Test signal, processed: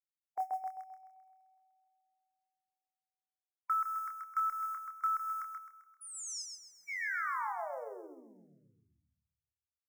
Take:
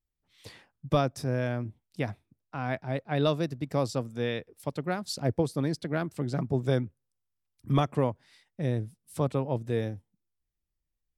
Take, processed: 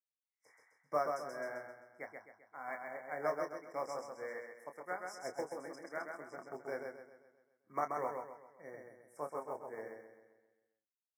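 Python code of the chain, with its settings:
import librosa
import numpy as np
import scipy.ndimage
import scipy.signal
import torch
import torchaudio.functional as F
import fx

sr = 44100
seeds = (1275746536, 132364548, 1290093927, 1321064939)

y = fx.noise_reduce_blind(x, sr, reduce_db=19)
y = scipy.signal.sosfilt(scipy.signal.butter(2, 670.0, 'highpass', fs=sr, output='sos'), y)
y = fx.high_shelf(y, sr, hz=7400.0, db=-10.5)
y = fx.quant_float(y, sr, bits=4)
y = fx.brickwall_bandstop(y, sr, low_hz=2300.0, high_hz=5000.0)
y = fx.doubler(y, sr, ms=27.0, db=-6.5)
y = fx.echo_feedback(y, sr, ms=131, feedback_pct=52, wet_db=-3.0)
y = fx.upward_expand(y, sr, threshold_db=-43.0, expansion=1.5)
y = y * 10.0 ** (-4.0 / 20.0)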